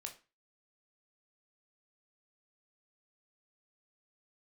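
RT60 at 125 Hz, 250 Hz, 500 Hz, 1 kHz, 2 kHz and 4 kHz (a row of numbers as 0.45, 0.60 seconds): 0.35, 0.35, 0.30, 0.35, 0.30, 0.30 seconds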